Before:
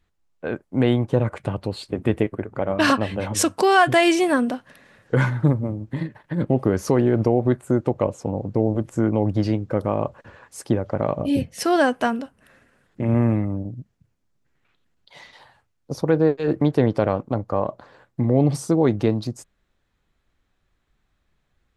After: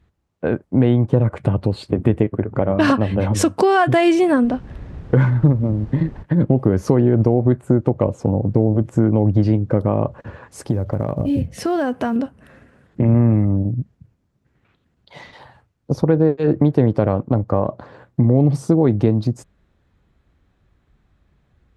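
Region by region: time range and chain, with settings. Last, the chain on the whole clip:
4.43–6.22 s: companding laws mixed up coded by A + added noise brown -41 dBFS + distance through air 53 m
10.60–12.16 s: peaking EQ 70 Hz +5.5 dB 1.6 oct + compression 2:1, threshold -32 dBFS + short-mantissa float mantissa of 4-bit
whole clip: high-pass 61 Hz; tilt EQ -2.5 dB/octave; compression 2:1, threshold -23 dBFS; trim +6.5 dB

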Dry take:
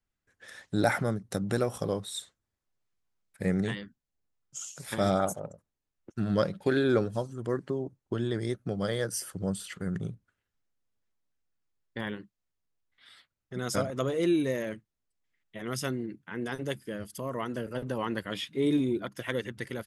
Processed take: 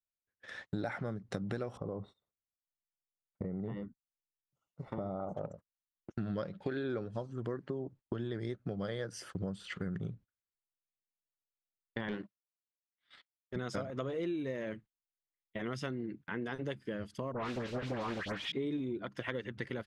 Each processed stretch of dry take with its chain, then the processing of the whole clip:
1.77–5.37 s: compression 5:1, threshold -31 dBFS + Savitzky-Golay filter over 65 samples
12.08–13.56 s: high-pass 150 Hz + waveshaping leveller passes 2 + transient shaper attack -9 dB, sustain -3 dB
17.32–18.52 s: block-companded coder 3-bit + phase dispersion highs, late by 122 ms, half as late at 2.4 kHz + loudspeaker Doppler distortion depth 0.37 ms
whole clip: low-pass 3.8 kHz 12 dB/octave; gate -50 dBFS, range -25 dB; compression 6:1, threshold -37 dBFS; trim +2.5 dB

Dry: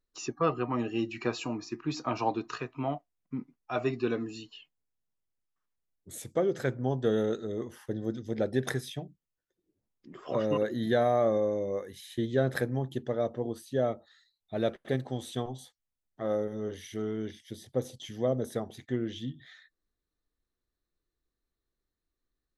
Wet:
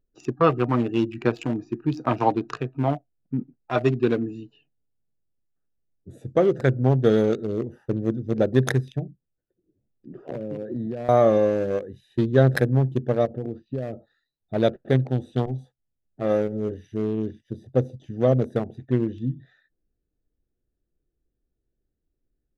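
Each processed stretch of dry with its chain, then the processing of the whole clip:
10.22–11.09 s: high-pass 90 Hz 24 dB/octave + treble shelf 2.8 kHz -7 dB + compression 20:1, threshold -33 dBFS
13.25–13.93 s: low-pass 3.8 kHz 24 dB/octave + compression 10:1, threshold -32 dBFS
whole clip: local Wiener filter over 41 samples; peaking EQ 130 Hz +5 dB 0.22 oct; trim +9 dB

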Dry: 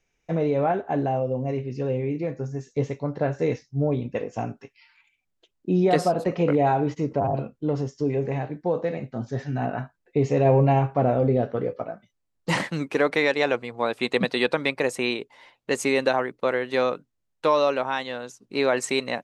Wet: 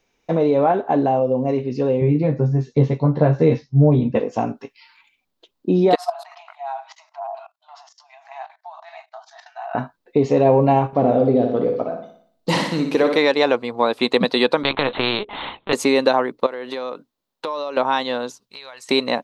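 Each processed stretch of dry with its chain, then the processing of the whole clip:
2.01–4.20 s: low-pass 4.2 kHz + peaking EQ 120 Hz +14 dB 0.94 oct + doubling 13 ms -3.5 dB
5.95–9.75 s: level held to a coarse grid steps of 18 dB + brick-wall FIR high-pass 630 Hz
10.87–13.18 s: peaking EQ 1.2 kHz -6 dB 1.6 oct + flutter echo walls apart 10.1 m, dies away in 0.57 s
14.63–15.73 s: LPC vocoder at 8 kHz pitch kept + doubling 14 ms -13 dB + spectrum-flattening compressor 2:1
16.46–17.77 s: bass shelf 150 Hz -10.5 dB + compression 8:1, threshold -33 dBFS
18.40–18.89 s: amplifier tone stack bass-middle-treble 10-0-10 + compression 5:1, threshold -44 dBFS
whole clip: ten-band graphic EQ 250 Hz +9 dB, 500 Hz +6 dB, 1 kHz +10 dB, 4 kHz +10 dB, 8 kHz -4 dB; compression 1.5:1, threshold -18 dBFS; treble shelf 8.4 kHz +10.5 dB

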